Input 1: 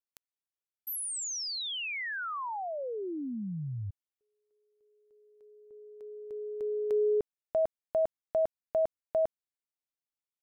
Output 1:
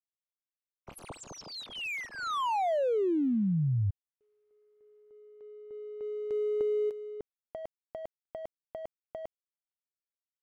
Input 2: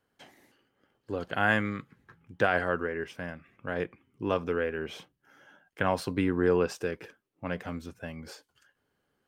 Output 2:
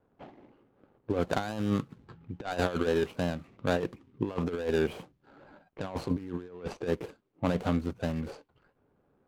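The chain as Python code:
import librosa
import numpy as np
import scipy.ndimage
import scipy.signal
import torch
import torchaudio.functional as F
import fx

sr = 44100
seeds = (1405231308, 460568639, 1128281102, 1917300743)

y = scipy.signal.medfilt(x, 25)
y = fx.over_compress(y, sr, threshold_db=-34.0, ratio=-0.5)
y = fx.env_lowpass(y, sr, base_hz=2100.0, full_db=-35.0)
y = y * librosa.db_to_amplitude(5.0)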